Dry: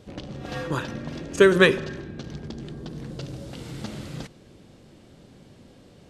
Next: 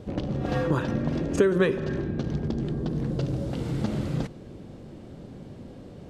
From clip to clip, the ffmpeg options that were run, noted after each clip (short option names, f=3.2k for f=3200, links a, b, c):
-af "tiltshelf=f=1.4k:g=6,acompressor=threshold=-23dB:ratio=4,volume=2.5dB"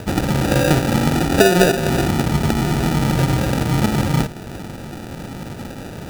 -filter_complex "[0:a]asplit=2[a][b];[b]alimiter=limit=-19.5dB:level=0:latency=1:release=412,volume=0dB[c];[a][c]amix=inputs=2:normalize=0,acrusher=samples=41:mix=1:aa=0.000001,volume=5.5dB"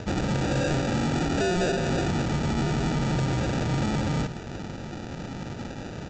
-af "aresample=16000,volume=18.5dB,asoftclip=hard,volume=-18.5dB,aresample=44100,aecho=1:1:162:0.188,volume=-4.5dB"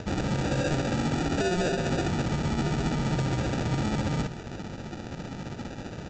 -af "tremolo=f=15:d=0.39"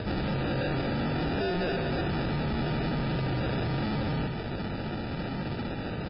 -af "aresample=16000,asoftclip=type=tanh:threshold=-35dB,aresample=44100,volume=7.5dB" -ar 12000 -c:a libmp3lame -b:a 16k